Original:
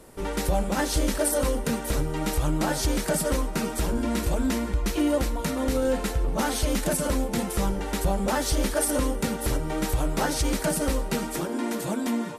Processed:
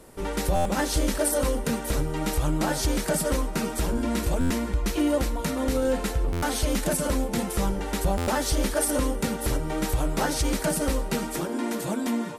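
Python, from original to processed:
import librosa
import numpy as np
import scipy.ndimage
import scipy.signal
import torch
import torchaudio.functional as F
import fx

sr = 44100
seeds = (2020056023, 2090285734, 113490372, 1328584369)

y = fx.buffer_glitch(x, sr, at_s=(0.55, 4.4, 6.32, 8.17), block=512, repeats=8)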